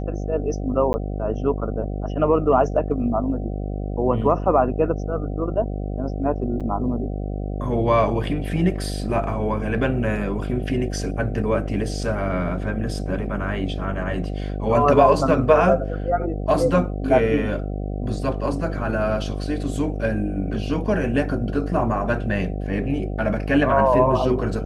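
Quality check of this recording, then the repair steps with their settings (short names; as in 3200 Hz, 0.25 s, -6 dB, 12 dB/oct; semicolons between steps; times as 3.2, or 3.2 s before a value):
buzz 50 Hz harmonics 15 -27 dBFS
0.93–0.94 gap 10 ms
6.6–6.61 gap 6.2 ms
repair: de-hum 50 Hz, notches 15; interpolate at 0.93, 10 ms; interpolate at 6.6, 6.2 ms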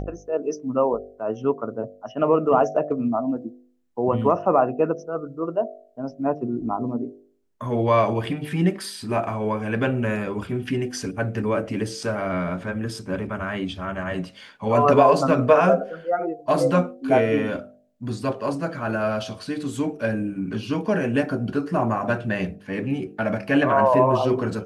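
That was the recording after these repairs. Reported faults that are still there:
none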